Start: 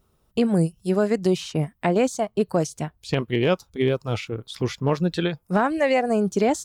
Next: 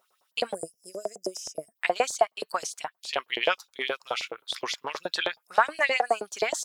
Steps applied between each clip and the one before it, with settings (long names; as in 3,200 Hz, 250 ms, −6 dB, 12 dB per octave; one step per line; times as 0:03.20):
gain on a spectral selection 0:00.54–0:01.76, 710–4,900 Hz −27 dB
auto-filter high-pass saw up 9.5 Hz 600–5,300 Hz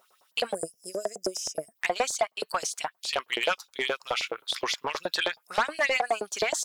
in parallel at 0 dB: downward compressor, threshold −34 dBFS, peak gain reduction 18 dB
on the sum: soft clipping −17.5 dBFS, distortion −11 dB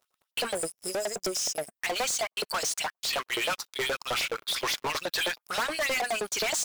leveller curve on the samples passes 5
level −8 dB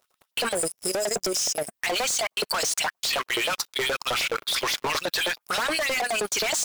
in parallel at −1.5 dB: brickwall limiter −33.5 dBFS, peak gain reduction 8 dB
on the sum: output level in coarse steps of 11 dB
level +7.5 dB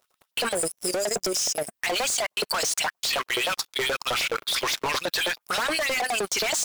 wow of a warped record 45 rpm, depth 100 cents